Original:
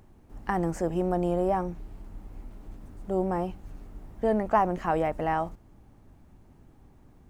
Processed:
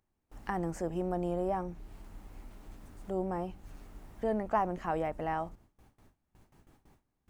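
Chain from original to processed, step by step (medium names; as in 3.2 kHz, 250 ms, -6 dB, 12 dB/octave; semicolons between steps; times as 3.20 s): gate with hold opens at -44 dBFS; tape noise reduction on one side only encoder only; trim -6.5 dB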